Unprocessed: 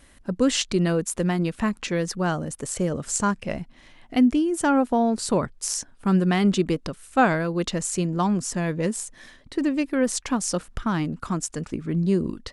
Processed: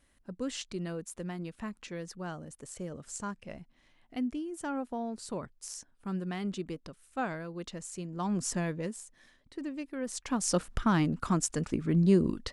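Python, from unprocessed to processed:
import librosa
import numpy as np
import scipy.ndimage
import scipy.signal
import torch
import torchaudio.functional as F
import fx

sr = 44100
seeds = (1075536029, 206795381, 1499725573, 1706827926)

y = fx.gain(x, sr, db=fx.line((8.1, -15.0), (8.48, -3.5), (9.01, -14.5), (10.01, -14.5), (10.57, -1.5)))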